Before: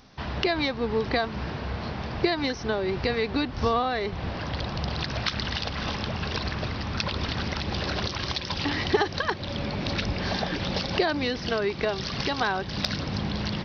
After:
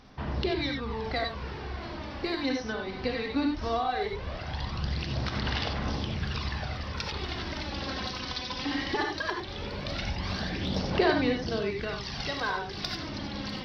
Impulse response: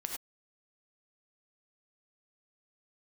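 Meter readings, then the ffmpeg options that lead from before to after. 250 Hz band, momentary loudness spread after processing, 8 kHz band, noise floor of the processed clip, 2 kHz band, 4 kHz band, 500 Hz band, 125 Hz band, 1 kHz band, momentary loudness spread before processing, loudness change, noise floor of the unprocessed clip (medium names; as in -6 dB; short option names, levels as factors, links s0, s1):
-2.5 dB, 6 LU, no reading, -39 dBFS, -3.5 dB, -4.5 dB, -4.5 dB, -3.5 dB, -3.5 dB, 6 LU, -3.5 dB, -35 dBFS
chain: -filter_complex "[0:a]aphaser=in_gain=1:out_gain=1:delay=4:decay=0.56:speed=0.18:type=sinusoidal[s0];[1:a]atrim=start_sample=2205,atrim=end_sample=4410[s1];[s0][s1]afir=irnorm=-1:irlink=0,volume=0.501"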